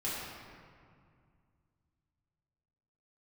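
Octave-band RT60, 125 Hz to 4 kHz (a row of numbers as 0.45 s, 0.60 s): 3.4 s, 2.8 s, 2.2 s, 2.2 s, 1.8 s, 1.3 s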